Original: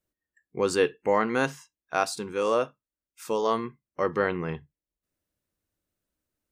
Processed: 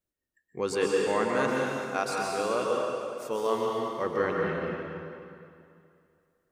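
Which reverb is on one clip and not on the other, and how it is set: plate-style reverb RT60 2.5 s, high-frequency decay 0.9×, pre-delay 110 ms, DRR -2 dB; trim -5 dB

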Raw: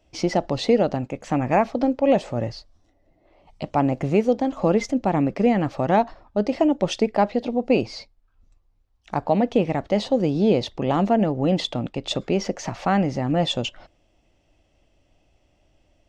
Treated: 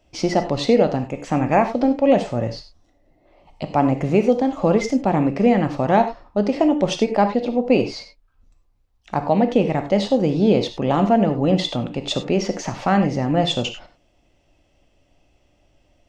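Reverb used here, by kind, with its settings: gated-style reverb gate 120 ms flat, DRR 7 dB; trim +2 dB

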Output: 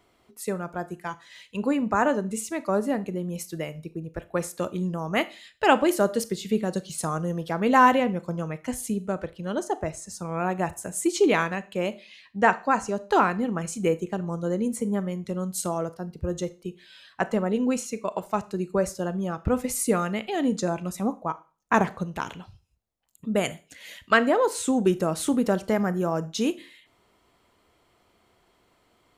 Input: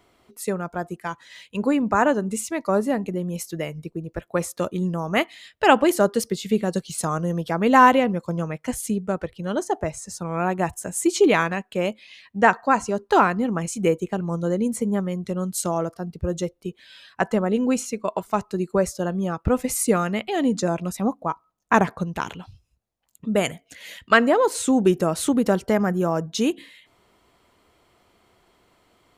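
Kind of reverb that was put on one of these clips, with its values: Schroeder reverb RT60 0.34 s, combs from 25 ms, DRR 14.5 dB; trim -3.5 dB

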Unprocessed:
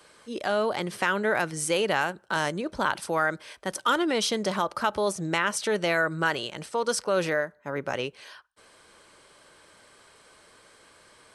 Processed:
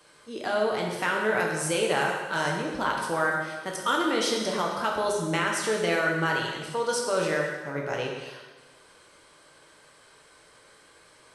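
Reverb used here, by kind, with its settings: plate-style reverb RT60 1.3 s, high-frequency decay 0.95×, DRR -1 dB; trim -3.5 dB

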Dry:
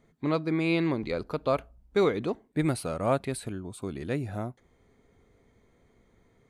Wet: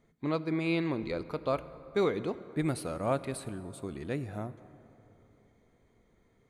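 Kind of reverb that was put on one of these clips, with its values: plate-style reverb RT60 3.4 s, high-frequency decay 0.5×, DRR 14 dB; trim -4 dB

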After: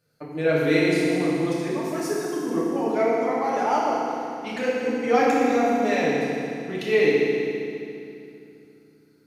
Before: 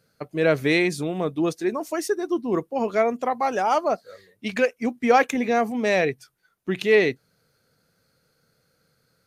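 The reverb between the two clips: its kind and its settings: FDN reverb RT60 2.7 s, low-frequency decay 1.35×, high-frequency decay 0.9×, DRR -7 dB; trim -8.5 dB

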